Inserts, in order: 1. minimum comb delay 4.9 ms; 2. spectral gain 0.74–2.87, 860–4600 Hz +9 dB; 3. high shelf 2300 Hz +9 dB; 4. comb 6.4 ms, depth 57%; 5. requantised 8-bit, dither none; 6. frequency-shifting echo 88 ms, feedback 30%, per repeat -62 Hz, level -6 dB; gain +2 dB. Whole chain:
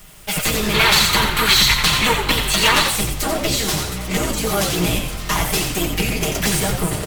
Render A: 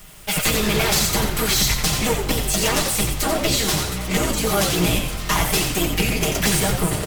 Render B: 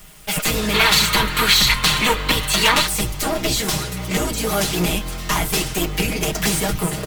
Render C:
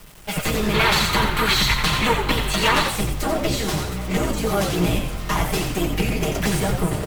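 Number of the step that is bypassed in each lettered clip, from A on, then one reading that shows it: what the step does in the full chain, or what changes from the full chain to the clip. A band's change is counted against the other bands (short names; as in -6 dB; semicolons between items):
2, 2 kHz band -5.5 dB; 6, loudness change -1.0 LU; 3, 8 kHz band -7.5 dB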